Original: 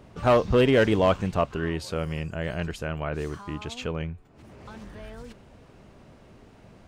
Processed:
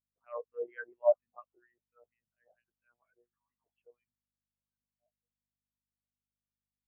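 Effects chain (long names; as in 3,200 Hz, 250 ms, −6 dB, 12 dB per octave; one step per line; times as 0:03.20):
one-pitch LPC vocoder at 8 kHz 120 Hz
LFO wah 4.3 Hz 670–2,400 Hz, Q 2.2
hum with harmonics 50 Hz, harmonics 5, −53 dBFS −1 dB per octave
every bin expanded away from the loudest bin 2.5 to 1
level −1 dB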